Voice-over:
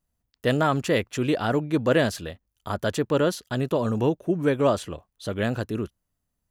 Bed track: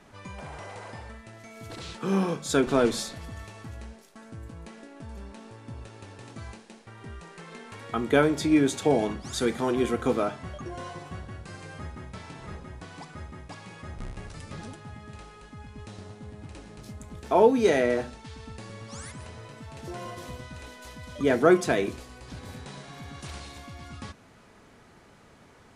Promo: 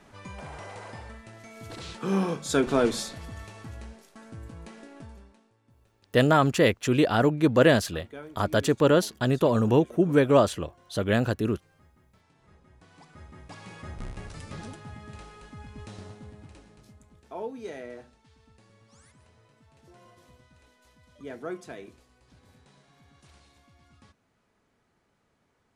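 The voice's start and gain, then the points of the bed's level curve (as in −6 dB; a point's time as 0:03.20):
5.70 s, +2.0 dB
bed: 0:04.99 −0.5 dB
0:05.53 −21.5 dB
0:12.32 −21.5 dB
0:13.67 0 dB
0:16.06 0 dB
0:17.29 −17 dB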